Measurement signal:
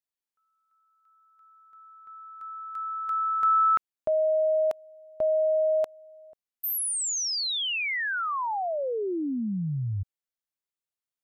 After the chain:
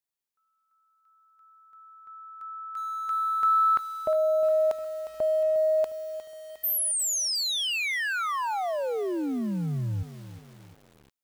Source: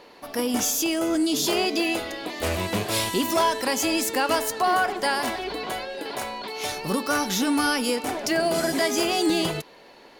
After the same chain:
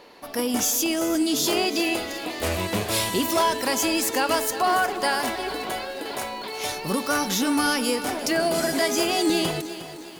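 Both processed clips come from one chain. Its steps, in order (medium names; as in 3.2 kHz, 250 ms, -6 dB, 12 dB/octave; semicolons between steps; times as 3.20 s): treble shelf 7.7 kHz +3 dB; bit-crushed delay 357 ms, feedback 55%, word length 7-bit, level -13 dB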